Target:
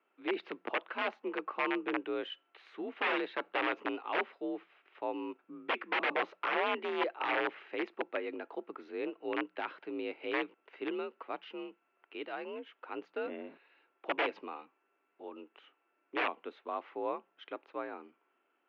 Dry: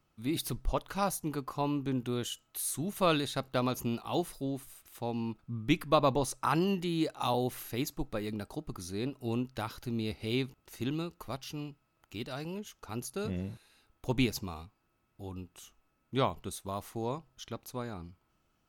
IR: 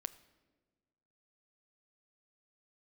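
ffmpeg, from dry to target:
-af "aeval=exprs='(mod(15.8*val(0)+1,2)-1)/15.8':c=same,highpass=f=260:t=q:w=0.5412,highpass=f=260:t=q:w=1.307,lowpass=f=2.6k:t=q:w=0.5176,lowpass=f=2.6k:t=q:w=0.7071,lowpass=f=2.6k:t=q:w=1.932,afreqshift=53,aemphasis=mode=production:type=75kf"

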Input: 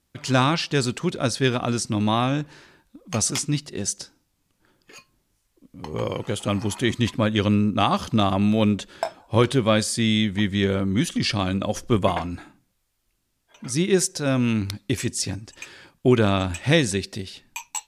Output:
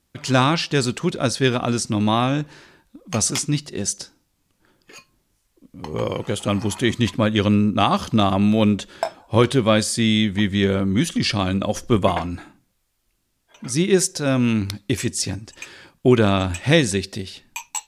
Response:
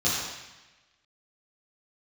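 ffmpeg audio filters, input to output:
-filter_complex "[0:a]asplit=2[a][b];[1:a]atrim=start_sample=2205,atrim=end_sample=3528[c];[b][c]afir=irnorm=-1:irlink=0,volume=-35dB[d];[a][d]amix=inputs=2:normalize=0,volume=2.5dB"

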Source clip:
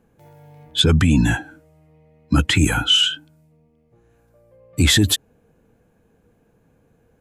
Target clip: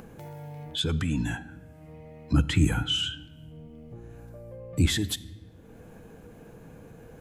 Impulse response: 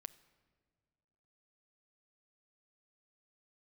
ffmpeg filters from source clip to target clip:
-filter_complex "[0:a]asettb=1/sr,asplit=3[a][b][c];[a]atrim=end=2.334[d];[b]atrim=start=2.33:end=4.86,asetpts=PTS-STARTPTS,afade=t=in:d=0.004:c=qsin,afade=t=out:st=2.526:d=0.004:c=qsin,lowshelf=f=420:g=9[e];[c]atrim=start=4.856[f];[d][e]acrossfade=d=0.004:c1=hsin:c2=qsin[g];[g][f]acrossfade=d=0.004:c1=qsin:c2=hsin,acompressor=mode=upward:threshold=-15dB:ratio=2.5[h];[1:a]atrim=start_sample=2205,asetrate=48510,aresample=44100[i];[h][i]afir=irnorm=-1:irlink=0,volume=-6dB"

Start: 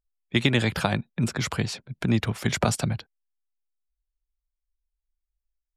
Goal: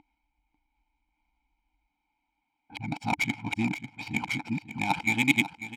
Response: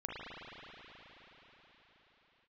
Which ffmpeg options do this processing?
-filter_complex "[0:a]areverse,aecho=1:1:1.3:0.87,acompressor=mode=upward:threshold=-25dB:ratio=2.5,crystalizer=i=5.5:c=0,asplit=3[a][b][c];[a]bandpass=f=300:t=q:w=8,volume=0dB[d];[b]bandpass=f=870:t=q:w=8,volume=-6dB[e];[c]bandpass=f=2.24k:t=q:w=8,volume=-9dB[f];[d][e][f]amix=inputs=3:normalize=0,adynamicsmooth=sensitivity=7:basefreq=1.7k,aecho=1:1:544|1088:0.224|0.047,volume=7dB"

